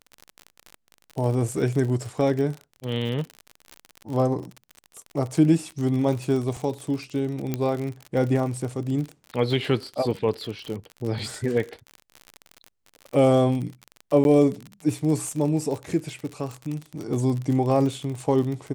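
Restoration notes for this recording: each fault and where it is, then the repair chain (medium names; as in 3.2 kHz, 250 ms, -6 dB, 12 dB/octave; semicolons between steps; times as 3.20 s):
crackle 47 per s -29 dBFS
7.54 s: pop -12 dBFS
14.24–14.25 s: dropout 11 ms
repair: de-click; interpolate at 14.24 s, 11 ms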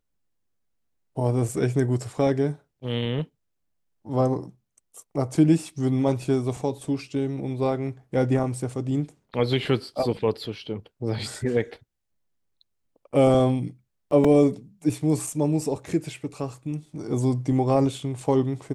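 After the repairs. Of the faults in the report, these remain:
nothing left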